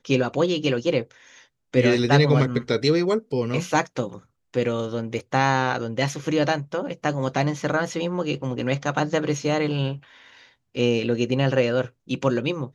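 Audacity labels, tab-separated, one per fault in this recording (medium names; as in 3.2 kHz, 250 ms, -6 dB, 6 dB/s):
5.190000	5.190000	dropout 2.8 ms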